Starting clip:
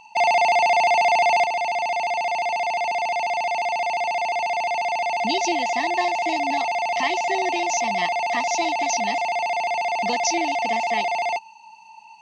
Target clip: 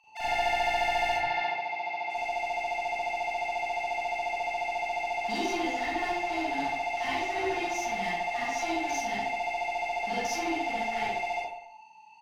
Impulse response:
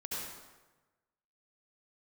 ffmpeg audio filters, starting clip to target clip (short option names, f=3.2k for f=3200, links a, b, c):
-filter_complex "[0:a]highshelf=f=2.9k:g=-8,bandreject=f=970:w=11,aeval=exprs='clip(val(0),-1,0.0631)':c=same,asettb=1/sr,asplit=3[a][b][c];[a]atrim=end=1.124[d];[b]atrim=start=1.12:end=2.1,asetpts=PTS-STARTPTS,afade=t=in:d=0.004:c=qsin,afade=t=out:st=0.976:d=0.004:c=qsin,highpass=f=130:w=0.5412,highpass=f=130:w=1.3066,equalizer=f=220:t=q:w=4:g=-10,equalizer=f=470:t=q:w=4:g=-3,equalizer=f=680:t=q:w=4:g=-4,equalizer=f=1k:t=q:w=4:g=3,equalizer=f=3k:t=q:w=4:g=-5,lowpass=f=4.5k:w=0.5412,lowpass=f=4.5k:w=1.3066[e];[c]atrim=start=2.096[f];[d][e]acrossfade=d=0.004:c1=hsin:c2=qsin[g];[g][f]acrossfade=d=0.004:c1=qsin:c2=hsin,acrossover=split=890[h][i];[h]adelay=40[j];[j][i]amix=inputs=2:normalize=0[k];[1:a]atrim=start_sample=2205,asetrate=83790,aresample=44100[l];[k][l]afir=irnorm=-1:irlink=0"